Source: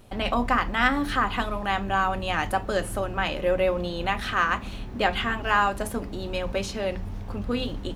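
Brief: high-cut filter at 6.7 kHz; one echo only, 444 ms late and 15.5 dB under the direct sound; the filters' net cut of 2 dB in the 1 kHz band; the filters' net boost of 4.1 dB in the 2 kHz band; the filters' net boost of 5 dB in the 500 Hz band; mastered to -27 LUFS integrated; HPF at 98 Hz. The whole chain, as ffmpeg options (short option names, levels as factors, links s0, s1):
-af "highpass=98,lowpass=6700,equalizer=f=500:t=o:g=7.5,equalizer=f=1000:t=o:g=-7.5,equalizer=f=2000:t=o:g=7.5,aecho=1:1:444:0.168,volume=0.668"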